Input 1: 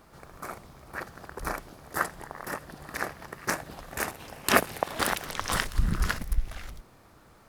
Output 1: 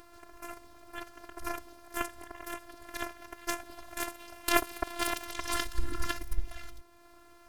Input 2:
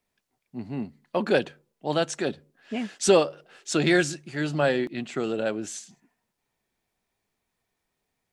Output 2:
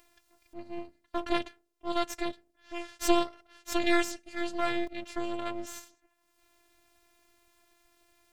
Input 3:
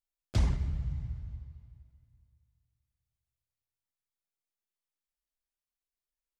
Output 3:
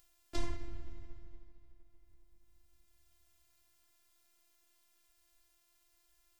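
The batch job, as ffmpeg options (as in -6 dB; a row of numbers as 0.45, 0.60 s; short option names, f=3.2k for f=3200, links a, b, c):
-af "afftfilt=real='hypot(re,im)*cos(PI*b)':imag='0':win_size=512:overlap=0.75,acompressor=mode=upward:threshold=-47dB:ratio=2.5,aeval=exprs='max(val(0),0)':c=same"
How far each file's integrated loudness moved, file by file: -5.0, -6.5, -12.5 LU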